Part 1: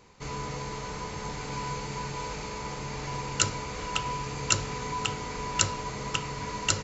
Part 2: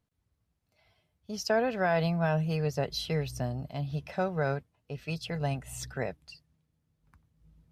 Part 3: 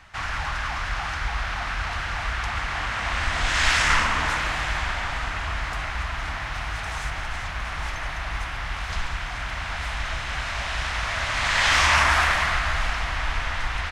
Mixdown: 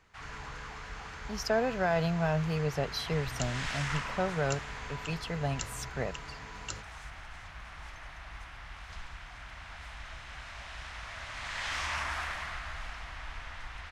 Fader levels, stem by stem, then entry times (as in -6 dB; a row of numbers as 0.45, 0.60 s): -14.5, -1.5, -16.0 dB; 0.00, 0.00, 0.00 s